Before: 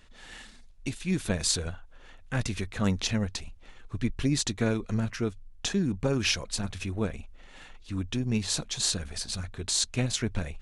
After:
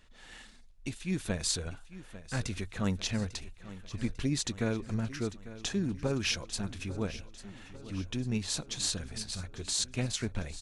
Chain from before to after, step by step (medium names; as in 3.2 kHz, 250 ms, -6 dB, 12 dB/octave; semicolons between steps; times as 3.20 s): feedback delay 847 ms, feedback 54%, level -15.5 dB; trim -4.5 dB